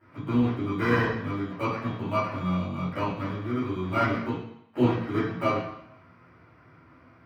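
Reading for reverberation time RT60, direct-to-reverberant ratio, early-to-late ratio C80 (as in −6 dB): 0.75 s, −12.5 dB, 5.5 dB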